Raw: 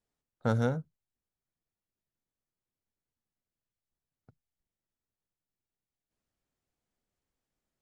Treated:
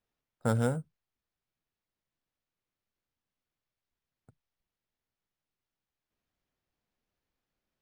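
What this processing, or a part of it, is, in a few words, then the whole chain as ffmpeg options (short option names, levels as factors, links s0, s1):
crushed at another speed: -af "asetrate=22050,aresample=44100,acrusher=samples=10:mix=1:aa=0.000001,asetrate=88200,aresample=44100"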